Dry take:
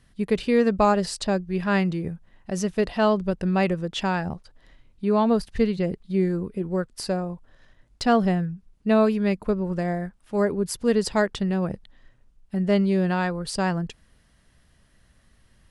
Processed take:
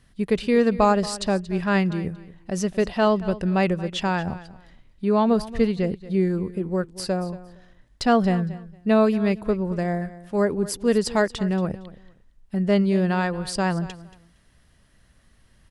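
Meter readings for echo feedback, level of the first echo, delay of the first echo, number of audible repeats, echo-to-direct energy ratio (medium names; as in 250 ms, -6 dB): 20%, -17.0 dB, 230 ms, 2, -17.0 dB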